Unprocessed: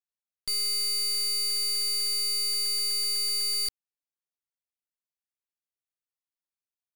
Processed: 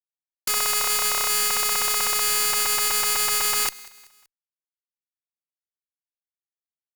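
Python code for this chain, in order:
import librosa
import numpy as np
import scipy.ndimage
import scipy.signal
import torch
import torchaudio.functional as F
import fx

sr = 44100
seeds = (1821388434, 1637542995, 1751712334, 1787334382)

p1 = fx.spec_flatten(x, sr, power=0.23)
p2 = scipy.signal.sosfilt(scipy.signal.butter(4, 850.0, 'highpass', fs=sr, output='sos'), p1)
p3 = fx.fuzz(p2, sr, gain_db=33.0, gate_db=-37.0)
p4 = p3 + fx.echo_feedback(p3, sr, ms=190, feedback_pct=44, wet_db=-23.5, dry=0)
y = np.clip(10.0 ** (18.0 / 20.0) * p4, -1.0, 1.0) / 10.0 ** (18.0 / 20.0)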